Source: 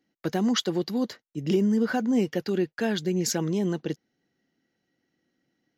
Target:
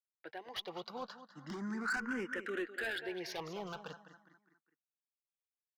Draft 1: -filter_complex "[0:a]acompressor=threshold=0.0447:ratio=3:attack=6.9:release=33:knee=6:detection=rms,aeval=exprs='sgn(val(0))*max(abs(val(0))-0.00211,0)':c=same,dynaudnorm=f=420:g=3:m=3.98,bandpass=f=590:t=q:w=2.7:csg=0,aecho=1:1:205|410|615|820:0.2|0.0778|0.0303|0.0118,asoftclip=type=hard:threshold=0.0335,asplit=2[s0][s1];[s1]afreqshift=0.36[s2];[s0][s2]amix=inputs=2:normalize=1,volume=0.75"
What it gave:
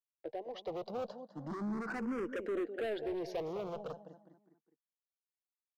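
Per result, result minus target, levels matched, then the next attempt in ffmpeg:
compression: peak gain reduction +7 dB; 500 Hz band +5.0 dB
-filter_complex "[0:a]aeval=exprs='sgn(val(0))*max(abs(val(0))-0.00211,0)':c=same,dynaudnorm=f=420:g=3:m=3.98,bandpass=f=590:t=q:w=2.7:csg=0,aecho=1:1:205|410|615|820:0.2|0.0778|0.0303|0.0118,asoftclip=type=hard:threshold=0.0335,asplit=2[s0][s1];[s1]afreqshift=0.36[s2];[s0][s2]amix=inputs=2:normalize=1,volume=0.75"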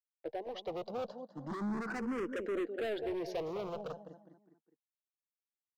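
500 Hz band +5.0 dB
-filter_complex "[0:a]aeval=exprs='sgn(val(0))*max(abs(val(0))-0.00211,0)':c=same,dynaudnorm=f=420:g=3:m=3.98,bandpass=f=1400:t=q:w=2.7:csg=0,aecho=1:1:205|410|615|820:0.2|0.0778|0.0303|0.0118,asoftclip=type=hard:threshold=0.0335,asplit=2[s0][s1];[s1]afreqshift=0.36[s2];[s0][s2]amix=inputs=2:normalize=1,volume=0.75"

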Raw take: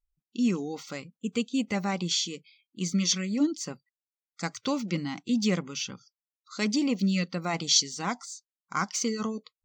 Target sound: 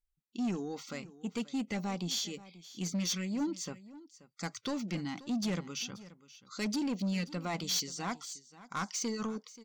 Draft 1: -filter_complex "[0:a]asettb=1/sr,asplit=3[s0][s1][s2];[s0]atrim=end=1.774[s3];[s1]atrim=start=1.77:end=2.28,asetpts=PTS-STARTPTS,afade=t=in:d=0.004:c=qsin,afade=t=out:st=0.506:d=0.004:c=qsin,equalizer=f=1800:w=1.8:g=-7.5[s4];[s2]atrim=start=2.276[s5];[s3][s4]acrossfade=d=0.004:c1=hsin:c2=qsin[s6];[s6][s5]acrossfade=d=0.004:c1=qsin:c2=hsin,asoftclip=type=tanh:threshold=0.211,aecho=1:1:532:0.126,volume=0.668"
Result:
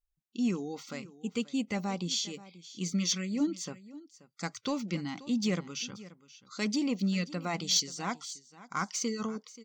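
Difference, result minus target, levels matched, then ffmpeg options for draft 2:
saturation: distortion -14 dB
-filter_complex "[0:a]asettb=1/sr,asplit=3[s0][s1][s2];[s0]atrim=end=1.774[s3];[s1]atrim=start=1.77:end=2.28,asetpts=PTS-STARTPTS,afade=t=in:d=0.004:c=qsin,afade=t=out:st=0.506:d=0.004:c=qsin,equalizer=f=1800:w=1.8:g=-7.5[s4];[s2]atrim=start=2.276[s5];[s3][s4]acrossfade=d=0.004:c1=hsin:c2=qsin[s6];[s6][s5]acrossfade=d=0.004:c1=qsin:c2=hsin,asoftclip=type=tanh:threshold=0.0562,aecho=1:1:532:0.126,volume=0.668"

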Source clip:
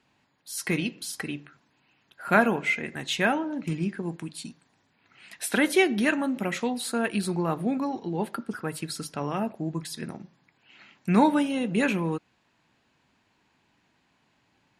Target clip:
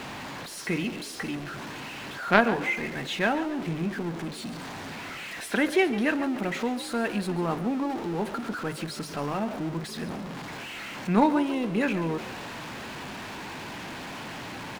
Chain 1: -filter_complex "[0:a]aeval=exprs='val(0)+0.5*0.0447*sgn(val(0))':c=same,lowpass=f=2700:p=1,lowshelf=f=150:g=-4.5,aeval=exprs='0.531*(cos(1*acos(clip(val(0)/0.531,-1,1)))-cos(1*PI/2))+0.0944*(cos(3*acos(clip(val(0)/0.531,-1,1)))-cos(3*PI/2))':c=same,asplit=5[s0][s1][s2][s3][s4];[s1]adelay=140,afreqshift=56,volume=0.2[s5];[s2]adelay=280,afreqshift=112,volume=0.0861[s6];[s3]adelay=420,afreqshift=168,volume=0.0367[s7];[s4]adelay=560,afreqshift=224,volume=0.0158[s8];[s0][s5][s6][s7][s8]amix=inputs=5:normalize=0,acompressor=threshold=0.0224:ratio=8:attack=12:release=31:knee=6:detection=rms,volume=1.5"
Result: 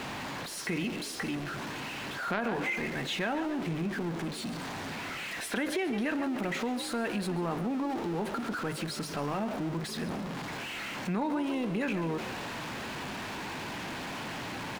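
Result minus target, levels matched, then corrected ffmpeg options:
compression: peak gain reduction +15 dB
-filter_complex "[0:a]aeval=exprs='val(0)+0.5*0.0447*sgn(val(0))':c=same,lowpass=f=2700:p=1,lowshelf=f=150:g=-4.5,aeval=exprs='0.531*(cos(1*acos(clip(val(0)/0.531,-1,1)))-cos(1*PI/2))+0.0944*(cos(3*acos(clip(val(0)/0.531,-1,1)))-cos(3*PI/2))':c=same,asplit=5[s0][s1][s2][s3][s4];[s1]adelay=140,afreqshift=56,volume=0.2[s5];[s2]adelay=280,afreqshift=112,volume=0.0861[s6];[s3]adelay=420,afreqshift=168,volume=0.0367[s7];[s4]adelay=560,afreqshift=224,volume=0.0158[s8];[s0][s5][s6][s7][s8]amix=inputs=5:normalize=0,volume=1.5"

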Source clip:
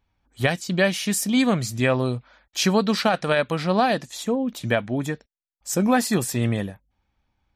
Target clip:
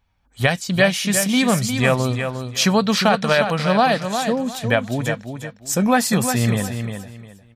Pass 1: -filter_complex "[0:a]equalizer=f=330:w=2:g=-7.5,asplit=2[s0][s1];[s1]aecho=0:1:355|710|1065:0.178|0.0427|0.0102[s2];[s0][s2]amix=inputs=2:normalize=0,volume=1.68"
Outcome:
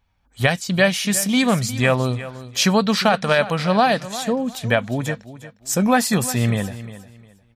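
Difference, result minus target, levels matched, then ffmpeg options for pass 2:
echo-to-direct -7.5 dB
-filter_complex "[0:a]equalizer=f=330:w=2:g=-7.5,asplit=2[s0][s1];[s1]aecho=0:1:355|710|1065:0.422|0.101|0.0243[s2];[s0][s2]amix=inputs=2:normalize=0,volume=1.68"

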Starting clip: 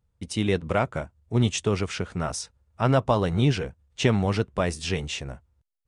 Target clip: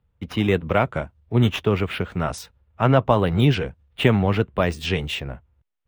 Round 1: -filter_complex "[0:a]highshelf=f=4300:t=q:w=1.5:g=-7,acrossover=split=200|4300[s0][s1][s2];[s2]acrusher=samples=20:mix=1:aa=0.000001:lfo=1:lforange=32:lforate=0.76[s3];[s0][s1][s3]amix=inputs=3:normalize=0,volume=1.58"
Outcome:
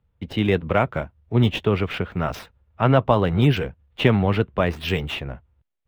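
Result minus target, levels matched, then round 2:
decimation with a swept rate: distortion +19 dB
-filter_complex "[0:a]highshelf=f=4300:t=q:w=1.5:g=-7,acrossover=split=200|4300[s0][s1][s2];[s2]acrusher=samples=6:mix=1:aa=0.000001:lfo=1:lforange=9.6:lforate=0.76[s3];[s0][s1][s3]amix=inputs=3:normalize=0,volume=1.58"

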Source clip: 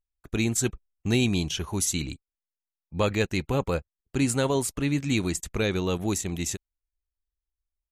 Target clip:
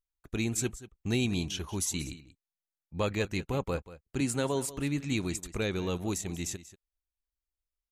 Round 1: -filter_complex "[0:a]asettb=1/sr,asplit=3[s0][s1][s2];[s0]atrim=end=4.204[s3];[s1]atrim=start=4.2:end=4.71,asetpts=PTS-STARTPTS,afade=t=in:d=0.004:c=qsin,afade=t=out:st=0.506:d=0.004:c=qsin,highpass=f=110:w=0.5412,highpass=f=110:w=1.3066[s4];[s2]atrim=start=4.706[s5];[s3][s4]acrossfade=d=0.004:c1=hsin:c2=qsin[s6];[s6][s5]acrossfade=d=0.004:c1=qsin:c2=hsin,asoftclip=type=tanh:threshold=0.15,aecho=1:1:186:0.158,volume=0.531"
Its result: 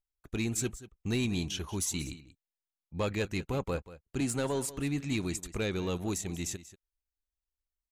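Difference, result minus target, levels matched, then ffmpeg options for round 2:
saturation: distortion +20 dB
-filter_complex "[0:a]asettb=1/sr,asplit=3[s0][s1][s2];[s0]atrim=end=4.204[s3];[s1]atrim=start=4.2:end=4.71,asetpts=PTS-STARTPTS,afade=t=in:d=0.004:c=qsin,afade=t=out:st=0.506:d=0.004:c=qsin,highpass=f=110:w=0.5412,highpass=f=110:w=1.3066[s4];[s2]atrim=start=4.706[s5];[s3][s4]acrossfade=d=0.004:c1=hsin:c2=qsin[s6];[s6][s5]acrossfade=d=0.004:c1=qsin:c2=hsin,asoftclip=type=tanh:threshold=0.596,aecho=1:1:186:0.158,volume=0.531"

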